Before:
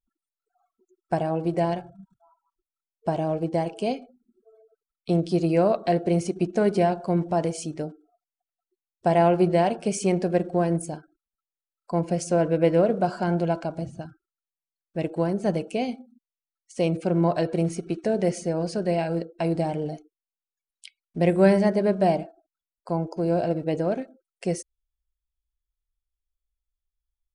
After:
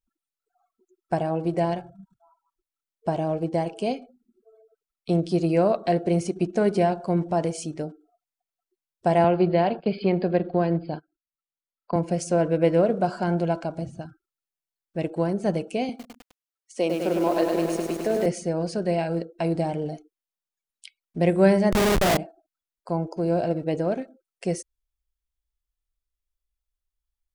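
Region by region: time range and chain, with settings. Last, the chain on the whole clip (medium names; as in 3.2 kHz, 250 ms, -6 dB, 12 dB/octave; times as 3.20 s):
9.24–11.96 s: gate -40 dBFS, range -18 dB + brick-wall FIR low-pass 5 kHz + three bands compressed up and down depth 40%
15.89–18.26 s: high-pass 230 Hz 24 dB/octave + bit-crushed delay 103 ms, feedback 80%, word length 7-bit, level -4.5 dB
21.72–22.17 s: doubling 39 ms -2 dB + Schmitt trigger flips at -26 dBFS
whole clip: none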